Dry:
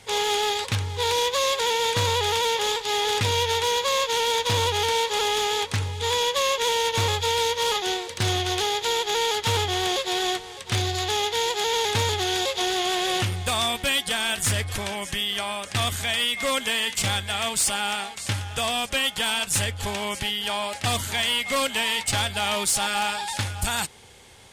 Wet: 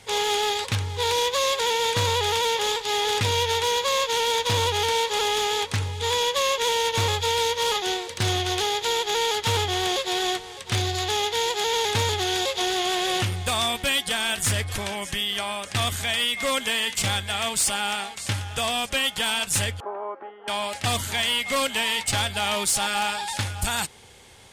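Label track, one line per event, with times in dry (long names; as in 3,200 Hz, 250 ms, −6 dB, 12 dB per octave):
19.800000	20.480000	elliptic band-pass filter 330–1,300 Hz, stop band 80 dB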